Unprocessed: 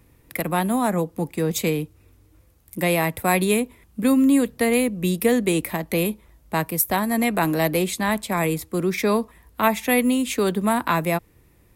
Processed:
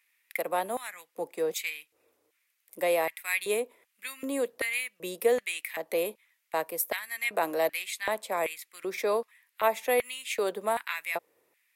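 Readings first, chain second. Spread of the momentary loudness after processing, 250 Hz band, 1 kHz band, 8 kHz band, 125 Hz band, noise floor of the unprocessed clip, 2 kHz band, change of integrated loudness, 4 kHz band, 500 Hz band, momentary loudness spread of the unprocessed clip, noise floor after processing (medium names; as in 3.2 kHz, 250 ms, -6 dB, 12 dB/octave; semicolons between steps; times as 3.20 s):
10 LU, -21.0 dB, -8.0 dB, -9.0 dB, under -25 dB, -56 dBFS, -5.5 dB, -8.5 dB, -7.0 dB, -5.5 dB, 8 LU, -76 dBFS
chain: LFO high-pass square 1.3 Hz 520–2100 Hz; trim -9 dB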